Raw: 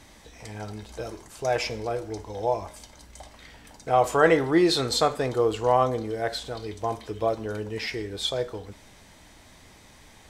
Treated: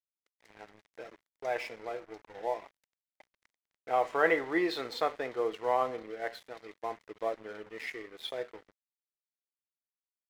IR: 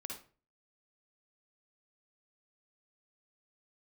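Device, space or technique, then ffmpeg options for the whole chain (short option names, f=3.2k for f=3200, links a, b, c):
pocket radio on a weak battery: -af "highpass=320,lowpass=3.3k,aeval=exprs='sgn(val(0))*max(abs(val(0))-0.00794,0)':c=same,equalizer=f=2k:t=o:w=0.37:g=7,volume=-7dB"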